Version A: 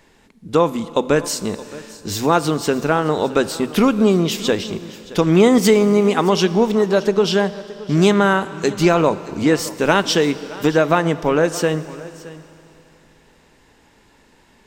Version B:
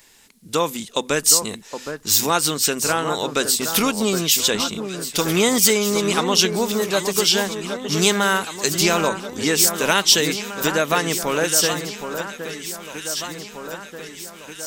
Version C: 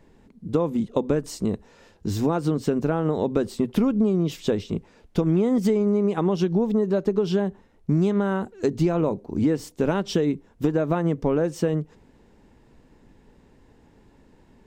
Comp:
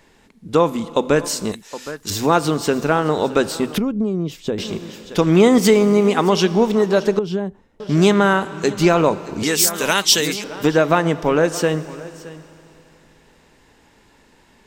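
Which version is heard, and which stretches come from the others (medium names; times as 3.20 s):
A
1.52–2.10 s: from B
3.78–4.58 s: from C
7.19–7.80 s: from C
9.43–10.44 s: from B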